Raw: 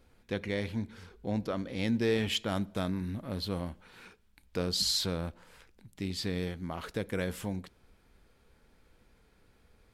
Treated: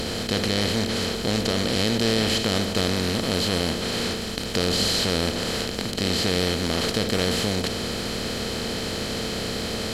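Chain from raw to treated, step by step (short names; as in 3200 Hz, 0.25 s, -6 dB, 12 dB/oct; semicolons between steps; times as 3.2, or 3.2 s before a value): per-bin compression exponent 0.2; low shelf 76 Hz +10.5 dB; AAC 64 kbps 48000 Hz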